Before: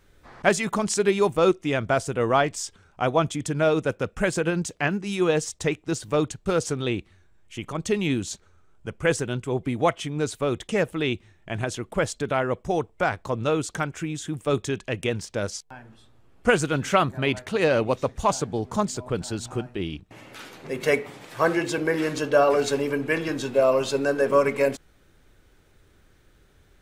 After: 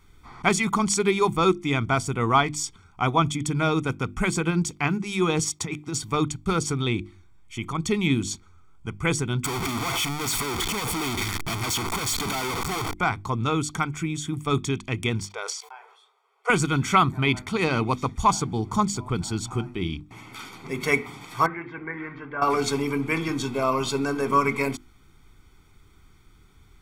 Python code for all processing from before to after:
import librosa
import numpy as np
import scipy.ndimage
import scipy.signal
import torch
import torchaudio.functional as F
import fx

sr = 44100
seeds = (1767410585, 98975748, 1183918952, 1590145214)

y = fx.chain(x, sr, fx.highpass(hz=120.0, slope=12),
    fx.over_compress(threshold_db=-29.0, ratio=-1.0), at=(5.39, 6.02))
y = fx.chain(y, sr, fx.clip_1bit(),
    fx.low_shelf(hz=170.0, db=-9.5),
    fx.doppler_dist(depth_ms=0.2), at=(9.44, 12.94))
y = fx.chain(y, sr, fx.brickwall_highpass(low_hz=390.0),
    fx.high_shelf(hz=4100.0, db=-9.0),
    fx.sustainer(db_per_s=78.0), at=(15.27, 16.5))
y = fx.chain(y, sr, fx.ladder_lowpass(hz=2000.0, resonance_pct=65),
    fx.notch(hz=1300.0, q=25.0), at=(21.46, 22.42))
y = fx.hum_notches(y, sr, base_hz=50, count=7)
y = y + 0.81 * np.pad(y, (int(0.9 * sr / 1000.0), 0))[:len(y)]